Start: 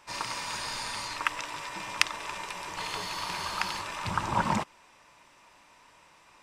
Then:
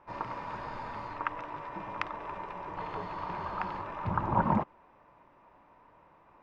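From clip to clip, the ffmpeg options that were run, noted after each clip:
ffmpeg -i in.wav -af "lowpass=1000,volume=2.5dB" out.wav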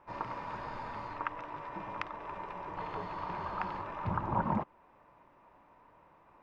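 ffmpeg -i in.wav -af "alimiter=limit=-16.5dB:level=0:latency=1:release=469,volume=-1.5dB" out.wav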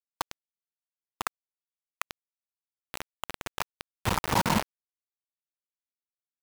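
ffmpeg -i in.wav -af "highshelf=frequency=3600:gain=-9,acrusher=bits=4:mix=0:aa=0.000001,volume=5.5dB" out.wav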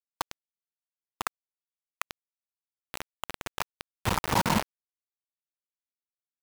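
ffmpeg -i in.wav -af anull out.wav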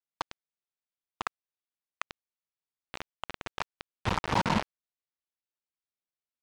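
ffmpeg -i in.wav -af "lowpass=4800,volume=-1.5dB" out.wav

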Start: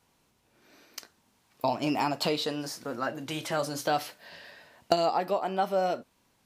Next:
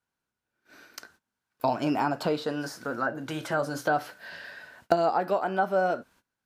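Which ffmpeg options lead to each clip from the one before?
ffmpeg -i in.wav -filter_complex "[0:a]agate=range=-21dB:threshold=-59dB:ratio=16:detection=peak,equalizer=frequency=1500:width=4.4:gain=13,acrossover=split=1200[link_01][link_02];[link_02]acompressor=threshold=-41dB:ratio=6[link_03];[link_01][link_03]amix=inputs=2:normalize=0,volume=2dB" out.wav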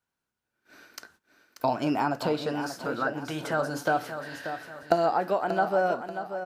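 ffmpeg -i in.wav -af "aecho=1:1:585|1170|1755|2340:0.335|0.137|0.0563|0.0231" out.wav

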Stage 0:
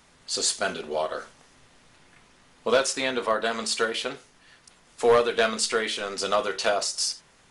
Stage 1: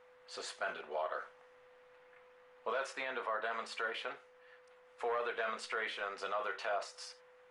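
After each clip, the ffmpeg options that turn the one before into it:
ffmpeg -i in.wav -filter_complex "[0:a]acrossover=split=570 2500:gain=0.112 1 0.0794[link_01][link_02][link_03];[link_01][link_02][link_03]amix=inputs=3:normalize=0,alimiter=limit=-23.5dB:level=0:latency=1:release=25,aeval=exprs='val(0)+0.00141*sin(2*PI*500*n/s)':channel_layout=same,volume=-4dB" out.wav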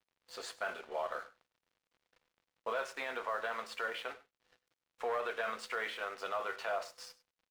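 ffmpeg -i in.wav -af "aeval=exprs='sgn(val(0))*max(abs(val(0))-0.0015,0)':channel_layout=same,aecho=1:1:100:0.119,volume=1dB" out.wav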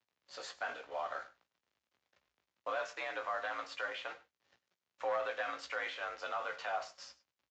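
ffmpeg -i in.wav -filter_complex "[0:a]afreqshift=57,asplit=2[link_01][link_02];[link_02]adelay=17,volume=-8dB[link_03];[link_01][link_03]amix=inputs=2:normalize=0,aresample=16000,aresample=44100,volume=-1.5dB" out.wav

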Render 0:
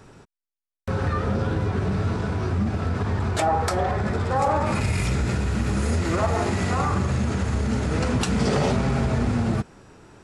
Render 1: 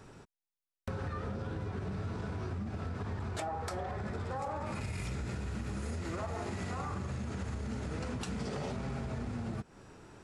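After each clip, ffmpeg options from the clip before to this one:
ffmpeg -i in.wav -af "acompressor=threshold=-30dB:ratio=6,volume=-5dB" out.wav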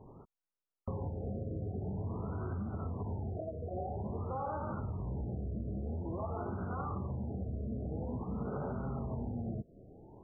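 ffmpeg -i in.wav -af "afftfilt=real='re*lt(b*sr/1024,720*pow(1600/720,0.5+0.5*sin(2*PI*0.49*pts/sr)))':imag='im*lt(b*sr/1024,720*pow(1600/720,0.5+0.5*sin(2*PI*0.49*pts/sr)))':win_size=1024:overlap=0.75" out.wav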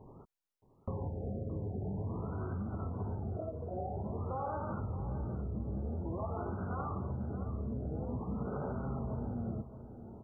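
ffmpeg -i in.wav -af "aecho=1:1:621|1242|1863:0.237|0.064|0.0173" out.wav

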